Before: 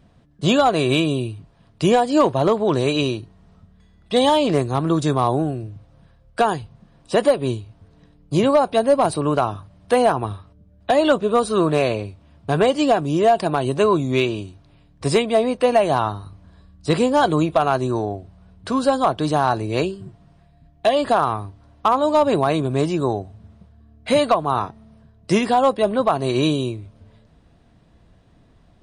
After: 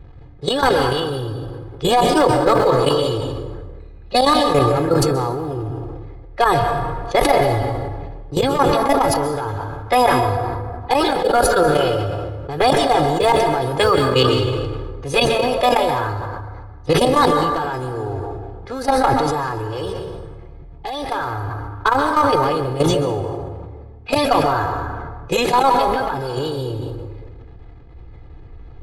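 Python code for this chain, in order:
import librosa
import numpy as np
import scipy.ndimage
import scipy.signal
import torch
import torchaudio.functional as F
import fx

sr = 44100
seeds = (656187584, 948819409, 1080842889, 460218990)

y = fx.law_mismatch(x, sr, coded='mu')
y = fx.env_lowpass(y, sr, base_hz=2100.0, full_db=-15.5)
y = fx.low_shelf(y, sr, hz=94.0, db=10.5)
y = fx.notch(y, sr, hz=4700.0, q=18.0)
y = y + 0.86 * np.pad(y, (int(2.4 * sr / 1000.0), 0))[:len(y)]
y = fx.level_steps(y, sr, step_db=13)
y = fx.formant_shift(y, sr, semitones=3)
y = fx.rev_plate(y, sr, seeds[0], rt60_s=1.6, hf_ratio=0.5, predelay_ms=115, drr_db=7.0)
y = fx.sustainer(y, sr, db_per_s=23.0)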